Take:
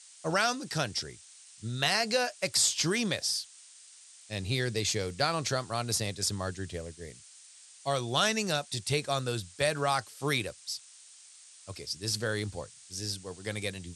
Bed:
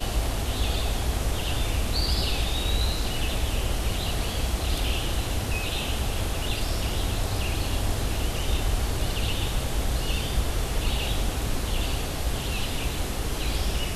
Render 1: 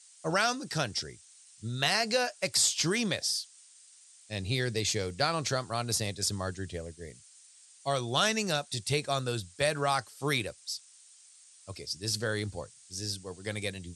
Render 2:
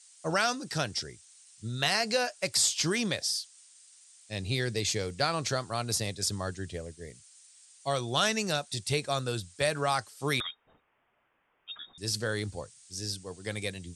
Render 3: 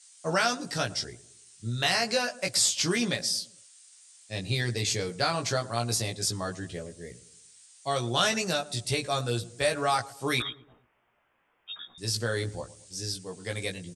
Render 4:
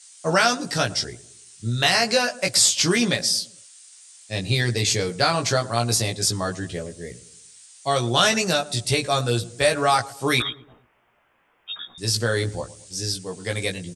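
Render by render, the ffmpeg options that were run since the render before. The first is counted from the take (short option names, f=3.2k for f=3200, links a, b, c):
-af "afftdn=nr=6:nf=-54"
-filter_complex "[0:a]asettb=1/sr,asplit=3[a][b][c];[a]atrim=end=10.404[d];[b]atrim=start=10.4:end=11.98,asetpts=PTS-STARTPTS,afade=t=in:d=0.004:c=qsin,afade=t=out:st=1.576:d=0.004:c=qsin,lowpass=f=3.2k:t=q:w=0.5098,lowpass=f=3.2k:t=q:w=0.6013,lowpass=f=3.2k:t=q:w=0.9,lowpass=f=3.2k:t=q:w=2.563,afreqshift=-3800[e];[c]atrim=start=11.976[f];[d][e]acrossfade=d=0.004:c1=hsin:c2=qsin[g];[g][f]acrossfade=d=0.004:c1=qsin:c2=hsin"
-filter_complex "[0:a]asplit=2[a][b];[b]adelay=17,volume=-3dB[c];[a][c]amix=inputs=2:normalize=0,asplit=2[d][e];[e]adelay=112,lowpass=f=930:p=1,volume=-16.5dB,asplit=2[f][g];[g]adelay=112,lowpass=f=930:p=1,volume=0.5,asplit=2[h][i];[i]adelay=112,lowpass=f=930:p=1,volume=0.5,asplit=2[j][k];[k]adelay=112,lowpass=f=930:p=1,volume=0.5[l];[d][f][h][j][l]amix=inputs=5:normalize=0"
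-af "volume=7dB,alimiter=limit=-3dB:level=0:latency=1"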